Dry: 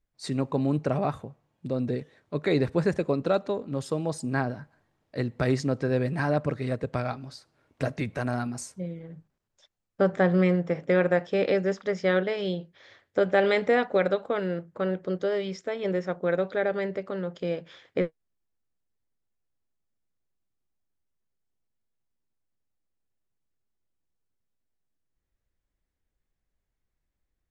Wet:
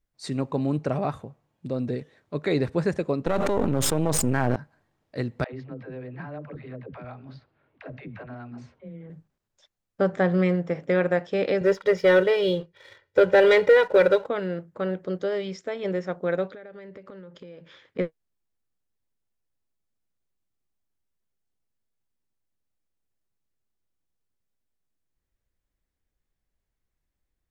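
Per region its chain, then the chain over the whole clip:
3.26–4.56 half-wave gain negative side -12 dB + bell 4500 Hz -8 dB 0.61 oct + fast leveller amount 100%
5.44–9.1 LPF 3200 Hz 24 dB/oct + compressor 2.5:1, threshold -39 dBFS + dispersion lows, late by 98 ms, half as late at 330 Hz
11.61–14.27 LPF 5200 Hz + comb 2.1 ms, depth 94% + sample leveller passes 1
16.47–17.99 high shelf 7000 Hz -9.5 dB + compressor 12:1, threshold -39 dBFS + notch 720 Hz, Q 5.1
whole clip: dry

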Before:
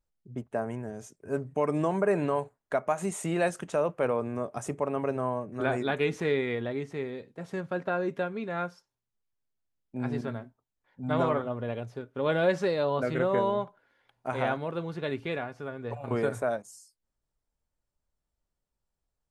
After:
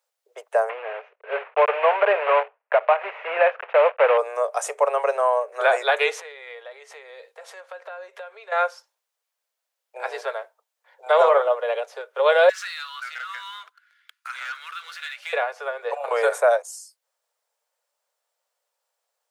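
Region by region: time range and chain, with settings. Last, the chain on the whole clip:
0.69–4.18 block floating point 3-bit + elliptic low-pass 2600 Hz, stop band 70 dB
6.19–8.52 low shelf 430 Hz -5.5 dB + compressor 5:1, threshold -46 dBFS
11.06–11.55 bell 140 Hz +14.5 dB 2.1 oct + mismatched tape noise reduction encoder only
12.49–15.33 Chebyshev band-stop 130–1300 Hz, order 4 + sample leveller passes 2 + compressor 3:1, threshold -45 dBFS
whole clip: steep high-pass 470 Hz 72 dB/oct; maximiser +18.5 dB; gain -6.5 dB

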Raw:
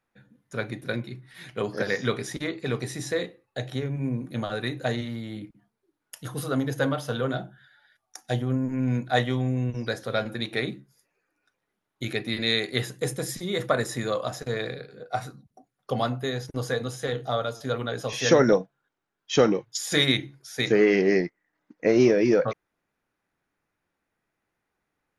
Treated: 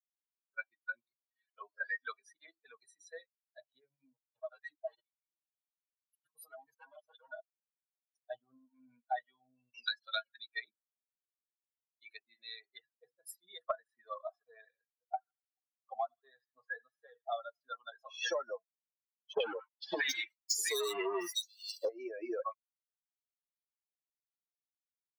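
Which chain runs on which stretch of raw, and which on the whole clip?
4.13–8.22 overloaded stage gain 26.5 dB + comb 6.3 ms, depth 97% + level quantiser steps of 15 dB
9.74–10.36 weighting filter D + three-band squash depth 40%
12.17–13.27 tape spacing loss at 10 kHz 21 dB + notches 60/120/180/240/300/360/420/480/540 Hz
13.77–17.32 high shelf 4000 Hz -9.5 dB + thin delay 77 ms, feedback 64%, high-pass 1500 Hz, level -9.5 dB
19.33–21.89 sample leveller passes 5 + three bands offset in time lows, mids, highs 70/760 ms, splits 1100/3700 Hz
whole clip: per-bin expansion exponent 3; HPF 490 Hz 24 dB/oct; compressor 10:1, threshold -45 dBFS; gain +11.5 dB

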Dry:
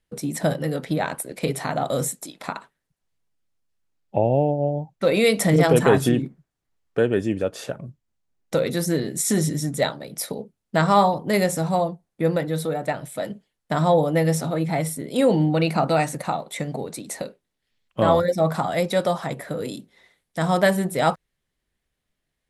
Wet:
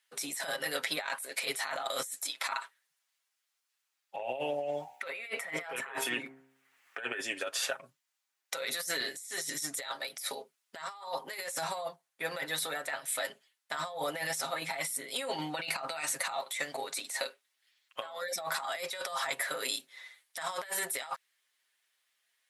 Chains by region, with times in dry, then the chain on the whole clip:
4.19–7.21 resonant high shelf 3100 Hz -9 dB, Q 1.5 + de-hum 66.45 Hz, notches 15 + three-band squash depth 70%
11.54–16.34 low shelf 180 Hz +7 dB + tremolo saw down 1.3 Hz, depth 45%
whole clip: HPF 1300 Hz 12 dB/oct; comb 7.4 ms, depth 69%; negative-ratio compressor -37 dBFS, ratio -1

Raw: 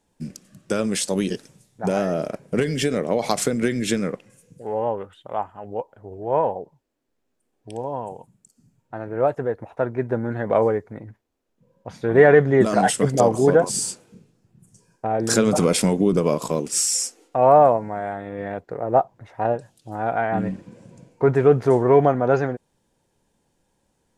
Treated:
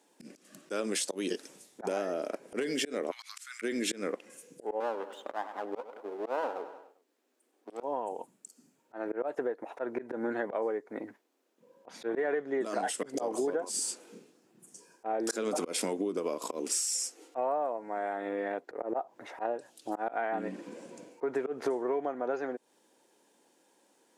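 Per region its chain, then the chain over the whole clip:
3.11–3.62 steep high-pass 1200 Hz 48 dB/oct + compressor, threshold -35 dBFS + auto swell 0.257 s
4.8–7.83 half-wave gain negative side -12 dB + HPF 200 Hz 24 dB/oct + feedback echo 99 ms, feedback 47%, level -18 dB
whole clip: Chebyshev high-pass 290 Hz, order 3; auto swell 0.19 s; compressor 8:1, threshold -34 dBFS; gain +4.5 dB

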